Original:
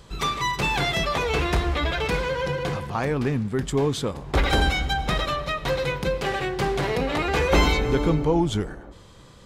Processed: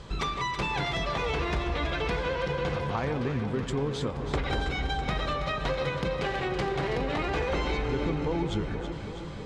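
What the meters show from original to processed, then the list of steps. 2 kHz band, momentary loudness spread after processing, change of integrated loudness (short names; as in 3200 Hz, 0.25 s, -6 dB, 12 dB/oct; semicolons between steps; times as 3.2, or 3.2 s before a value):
-6.0 dB, 2 LU, -6.0 dB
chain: compressor 5:1, threshold -32 dBFS, peak gain reduction 16 dB; air absorption 79 m; echo with dull and thin repeats by turns 0.163 s, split 1000 Hz, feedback 85%, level -8 dB; gain +4 dB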